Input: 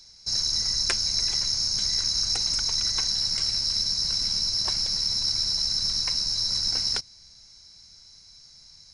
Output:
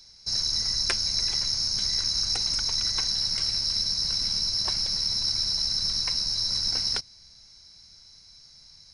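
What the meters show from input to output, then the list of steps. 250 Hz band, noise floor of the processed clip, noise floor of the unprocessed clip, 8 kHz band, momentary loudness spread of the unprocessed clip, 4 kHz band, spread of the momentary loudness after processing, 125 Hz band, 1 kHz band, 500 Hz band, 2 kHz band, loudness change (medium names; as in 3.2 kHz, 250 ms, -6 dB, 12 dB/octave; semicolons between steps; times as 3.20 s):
0.0 dB, -53 dBFS, -52 dBFS, -2.5 dB, 1 LU, -1.0 dB, 1 LU, 0.0 dB, 0.0 dB, no reading, 0.0 dB, -1.0 dB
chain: peaking EQ 7.2 kHz -8 dB 0.29 oct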